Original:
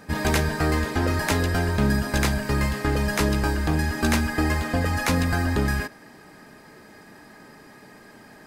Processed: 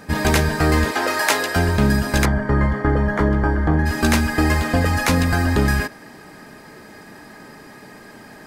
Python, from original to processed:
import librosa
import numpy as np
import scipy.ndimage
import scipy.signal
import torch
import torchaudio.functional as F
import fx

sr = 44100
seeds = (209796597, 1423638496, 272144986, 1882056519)

y = fx.highpass(x, sr, hz=530.0, slope=12, at=(0.91, 1.56))
y = fx.rider(y, sr, range_db=10, speed_s=0.5)
y = fx.savgol(y, sr, points=41, at=(2.24, 3.85), fade=0.02)
y = y * librosa.db_to_amplitude(5.5)